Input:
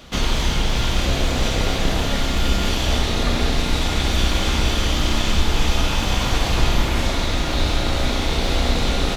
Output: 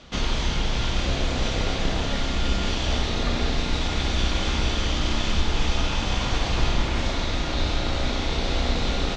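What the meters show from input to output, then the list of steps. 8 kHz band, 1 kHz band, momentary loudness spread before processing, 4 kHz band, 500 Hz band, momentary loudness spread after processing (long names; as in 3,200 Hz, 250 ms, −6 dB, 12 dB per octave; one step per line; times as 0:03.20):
−7.0 dB, −4.5 dB, 2 LU, −4.5 dB, −4.5 dB, 2 LU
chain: low-pass filter 6,800 Hz 24 dB per octave
level −4.5 dB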